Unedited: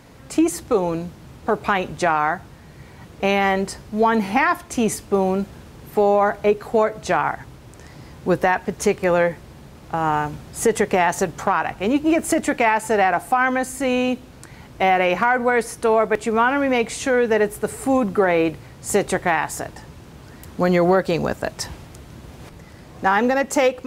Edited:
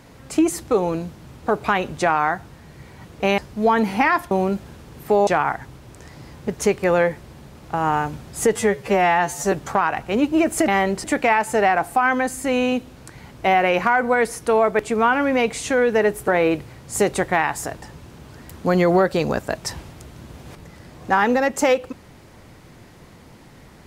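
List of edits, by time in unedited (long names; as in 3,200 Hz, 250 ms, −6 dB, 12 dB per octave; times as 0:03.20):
0:03.38–0:03.74: move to 0:12.40
0:04.67–0:05.18: remove
0:06.14–0:07.06: remove
0:08.27–0:08.68: remove
0:10.76–0:11.24: time-stretch 2×
0:17.64–0:18.22: remove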